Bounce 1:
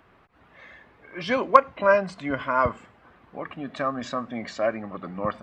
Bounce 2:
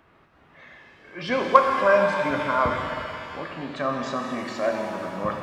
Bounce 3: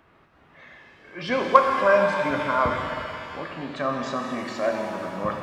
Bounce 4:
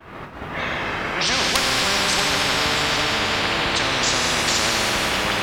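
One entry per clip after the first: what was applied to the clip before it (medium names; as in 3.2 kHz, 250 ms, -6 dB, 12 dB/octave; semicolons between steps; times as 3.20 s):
pitch-shifted reverb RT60 2.4 s, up +7 st, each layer -8 dB, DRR 2 dB; trim -1 dB
no audible change
ever faster or slower copies 111 ms, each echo -5 st, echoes 2, each echo -6 dB; expander -52 dBFS; spectrum-flattening compressor 10:1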